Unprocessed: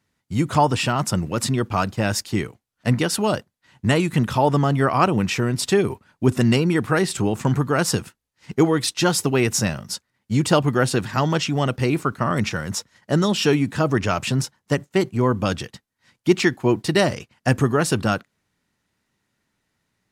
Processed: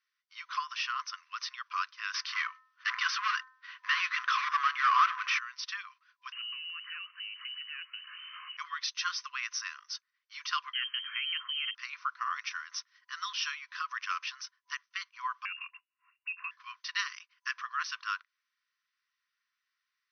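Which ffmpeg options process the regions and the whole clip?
ffmpeg -i in.wav -filter_complex "[0:a]asettb=1/sr,asplit=3[link_01][link_02][link_03];[link_01]atrim=end=2.144[link_04];[link_02]atrim=start=2.14:end=5.39,asetpts=PTS-STARTPTS,afade=type=in:duration=0.004:curve=qsin,afade=type=out:start_time=3.246:duration=0.004:curve=qsin,asplit=2[link_05][link_06];[link_06]highpass=frequency=720:poles=1,volume=29dB,asoftclip=type=tanh:threshold=-4dB[link_07];[link_05][link_07]amix=inputs=2:normalize=0,lowpass=frequency=1300:poles=1,volume=-6dB,bandreject=frequency=258:width_type=h:width=4,bandreject=frequency=516:width_type=h:width=4,bandreject=frequency=774:width_type=h:width=4,bandreject=frequency=1032:width_type=h:width=4,bandreject=frequency=1290:width_type=h:width=4,bandreject=frequency=1548:width_type=h:width=4,bandreject=frequency=1806:width_type=h:width=4[link_08];[link_03]atrim=start=5.386[link_09];[link_04][link_08]acrossfade=duration=0.004:curve1=hsin:curve2=qsin[link_10];[link_10][link_09]acrossfade=duration=0.004:curve1=qsin:curve2=hsin,asettb=1/sr,asplit=3[link_11][link_12][link_13];[link_11]atrim=end=6.324[link_14];[link_12]atrim=start=6.32:end=8.57,asetpts=PTS-STARTPTS,afade=type=in:duration=0.004:curve=qsin,afade=type=out:start_time=2.246:duration=0.004:curve=qsin,aeval=exprs='val(0)+0.5*0.0355*sgn(val(0))':channel_layout=same,acompressor=threshold=-35dB:ratio=3:attack=3.2:release=140:knee=1:detection=peak,lowpass=frequency=2600:width_type=q:width=0.5098,lowpass=frequency=2600:width_type=q:width=0.6013,lowpass=frequency=2600:width_type=q:width=0.9,lowpass=frequency=2600:width_type=q:width=2.563,afreqshift=-3100[link_15];[link_13]atrim=start=8.566[link_16];[link_14][link_15]acrossfade=duration=0.004:curve1=hsin:curve2=qsin[link_17];[link_17][link_16]acrossfade=duration=0.004:curve1=qsin:curve2=hsin,asettb=1/sr,asplit=3[link_18][link_19][link_20];[link_18]atrim=end=10.734[link_21];[link_19]atrim=start=10.73:end=11.75,asetpts=PTS-STARTPTS,afade=type=in:duration=0.004:curve=qsin,afade=type=out:start_time=1.016:duration=0.004:curve=qsin,highpass=52,acompressor=threshold=-20dB:ratio=4:attack=3.2:release=140:knee=1:detection=peak,lowpass=frequency=2800:width_type=q:width=0.5098,lowpass=frequency=2800:width_type=q:width=0.6013,lowpass=frequency=2800:width_type=q:width=0.9,lowpass=frequency=2800:width_type=q:width=2.563,afreqshift=-3300[link_22];[link_20]atrim=start=11.746[link_23];[link_21][link_22]acrossfade=duration=0.004:curve1=hsin:curve2=qsin[link_24];[link_24][link_23]acrossfade=duration=0.004:curve1=qsin:curve2=hsin,asettb=1/sr,asplit=3[link_25][link_26][link_27];[link_25]atrim=end=15.454[link_28];[link_26]atrim=start=15.45:end=16.51,asetpts=PTS-STARTPTS,afade=type=in:duration=0.004:curve=qsin,afade=type=out:start_time=1.056:duration=0.004:curve=qsin,lowpass=frequency=2500:width_type=q:width=0.5098,lowpass=frequency=2500:width_type=q:width=0.6013,lowpass=frequency=2500:width_type=q:width=0.9,lowpass=frequency=2500:width_type=q:width=2.563,afreqshift=-2900,acompressor=threshold=-27dB:ratio=6:attack=3.2:release=140:knee=1:detection=peak[link_29];[link_27]atrim=start=16.506[link_30];[link_28][link_29]acrossfade=duration=0.004:curve1=hsin:curve2=qsin[link_31];[link_31][link_30]acrossfade=duration=0.004:curve1=qsin:curve2=hsin,bandreject=frequency=3900:width=27,afftfilt=real='re*between(b*sr/4096,1000,6200)':imag='im*between(b*sr/4096,1000,6200)':win_size=4096:overlap=0.75,adynamicequalizer=threshold=0.0126:dfrequency=3800:dqfactor=0.9:tfrequency=3800:tqfactor=0.9:attack=5:release=100:ratio=0.375:range=2:mode=cutabove:tftype=bell,volume=-7.5dB" out.wav

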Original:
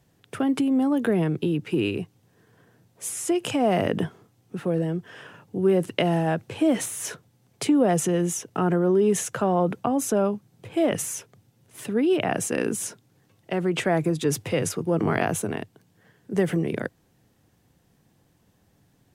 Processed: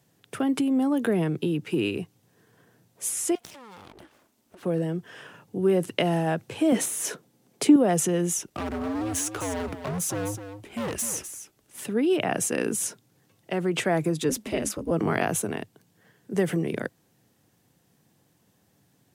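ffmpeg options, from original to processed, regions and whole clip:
ffmpeg -i in.wav -filter_complex "[0:a]asettb=1/sr,asplit=3[link_01][link_02][link_03];[link_01]atrim=end=3.354[link_04];[link_02]atrim=start=3.35:end=4.63,asetpts=PTS-STARTPTS,afade=type=in:duration=0.004:curve=qsin,afade=type=out:start_time=1.276:duration=0.004:curve=qsin,equalizer=frequency=330:width_type=o:width=0.46:gain=-6.5,acompressor=threshold=-40dB:ratio=5:attack=3.2:release=140:knee=1:detection=peak,aeval=exprs='abs(val(0))':channel_layout=same[link_05];[link_03]atrim=start=4.626[link_06];[link_04][link_05]acrossfade=duration=0.004:curve1=hsin:curve2=qsin[link_07];[link_07][link_06]acrossfade=duration=0.004:curve1=qsin:curve2=hsin,asettb=1/sr,asplit=3[link_08][link_09][link_10];[link_08]atrim=end=6.724[link_11];[link_09]atrim=start=6.72:end=7.76,asetpts=PTS-STARTPTS,afade=type=in:duration=0.004:curve=qsin,afade=type=out:start_time=1.036:duration=0.004:curve=qsin,highpass=190,equalizer=frequency=280:width_type=o:width=2.5:gain=7[link_12];[link_10]atrim=start=7.756[link_13];[link_11][link_12]acrossfade=duration=0.004:curve1=hsin:curve2=qsin[link_14];[link_14][link_13]acrossfade=duration=0.004:curve1=qsin:curve2=hsin,asettb=1/sr,asplit=3[link_15][link_16][link_17];[link_15]atrim=end=8.424[link_18];[link_16]atrim=start=8.42:end=11.82,asetpts=PTS-STARTPTS,afade=type=in:duration=0.004:curve=qsin,afade=type=out:start_time=3.396:duration=0.004:curve=qsin,afreqshift=-100,volume=26dB,asoftclip=hard,volume=-26dB,aecho=1:1:255:0.316,atrim=end_sample=149940[link_19];[link_17]atrim=start=11.816[link_20];[link_18][link_19]acrossfade=duration=0.004:curve1=hsin:curve2=qsin[link_21];[link_21][link_20]acrossfade=duration=0.004:curve1=qsin:curve2=hsin,asettb=1/sr,asplit=3[link_22][link_23][link_24];[link_22]atrim=end=14.294[link_25];[link_23]atrim=start=14.29:end=14.91,asetpts=PTS-STARTPTS,afade=type=in:duration=0.004:curve=qsin,afade=type=out:start_time=0.616:duration=0.004:curve=qsin,lowshelf=frequency=170:gain=7.5,aeval=exprs='val(0)*sin(2*PI*110*n/s)':channel_layout=same[link_26];[link_24]atrim=start=14.906[link_27];[link_25][link_26]acrossfade=duration=0.004:curve1=hsin:curve2=qsin[link_28];[link_28][link_27]acrossfade=duration=0.004:curve1=qsin:curve2=hsin,highpass=110,highshelf=frequency=4700:gain=5,volume=-1.5dB" out.wav

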